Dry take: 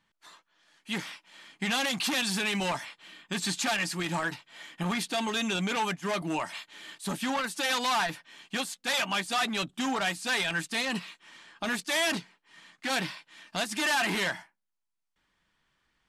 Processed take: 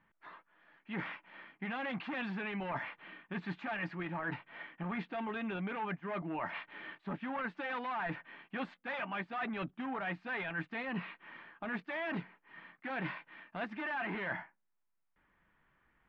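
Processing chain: low-pass 2.2 kHz 24 dB/octave; reverse; compression 6:1, threshold -39 dBFS, peak gain reduction 13 dB; reverse; trim +3 dB

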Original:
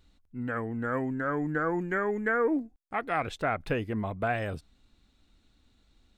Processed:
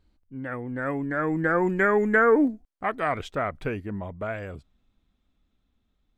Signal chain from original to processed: Doppler pass-by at 2.05 s, 27 m/s, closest 18 m; tape noise reduction on one side only decoder only; trim +8 dB

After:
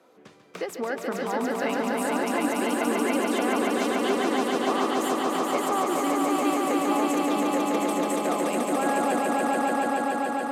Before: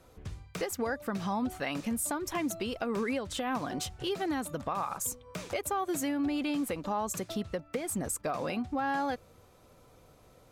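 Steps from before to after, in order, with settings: high-pass 230 Hz 24 dB/octave; treble shelf 4.7 kHz -10.5 dB; echo with a slow build-up 143 ms, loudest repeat 5, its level -3 dB; trim +3 dB

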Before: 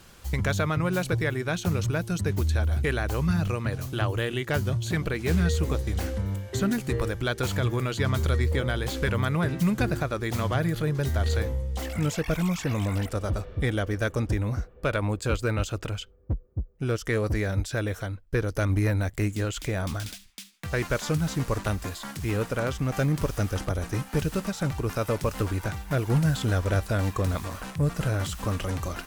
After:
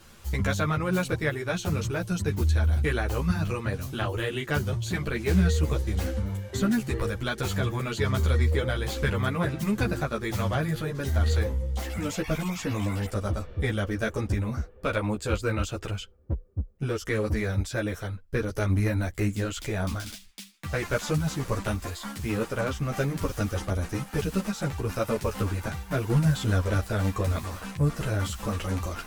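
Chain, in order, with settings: three-phase chorus; trim +2.5 dB

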